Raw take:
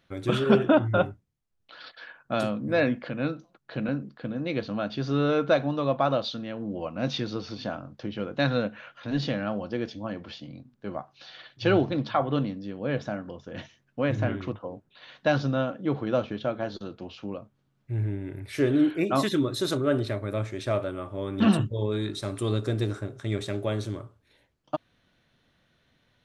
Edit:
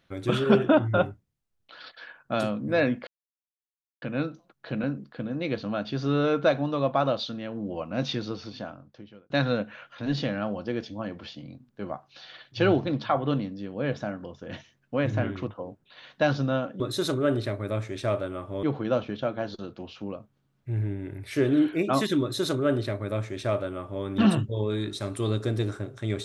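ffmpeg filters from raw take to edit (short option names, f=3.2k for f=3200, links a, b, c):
-filter_complex "[0:a]asplit=5[a][b][c][d][e];[a]atrim=end=3.07,asetpts=PTS-STARTPTS,afade=t=out:st=3.066:d=0.004:c=hsin,apad=pad_dur=0.95[f];[b]atrim=start=3.07:end=8.35,asetpts=PTS-STARTPTS,afade=t=in:d=0.004:c=hsin,afade=t=out:st=4.18:d=1.1[g];[c]atrim=start=8.35:end=15.852,asetpts=PTS-STARTPTS,afade=t=in:d=0.004:c=hsin[h];[d]atrim=start=19.428:end=21.262[i];[e]atrim=start=15.848[j];[f][g][h]concat=n=3:v=0:a=1[k];[k][i]acrossfade=d=0.004:c1=hsin:c2=hsin[l];[l][j]acrossfade=d=0.004:c1=hsin:c2=hsin"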